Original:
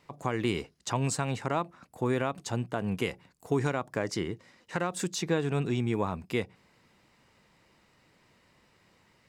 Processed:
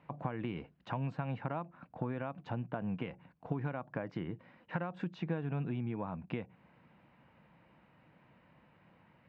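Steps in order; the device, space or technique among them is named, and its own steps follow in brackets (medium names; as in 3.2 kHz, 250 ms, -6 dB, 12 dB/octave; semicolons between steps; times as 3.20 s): bass amplifier (compression 4:1, threshold -36 dBFS, peak gain reduction 12 dB; cabinet simulation 61–2400 Hz, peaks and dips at 89 Hz -5 dB, 160 Hz +4 dB, 400 Hz -9 dB, 1.2 kHz -4 dB, 2 kHz -7 dB); trim +2.5 dB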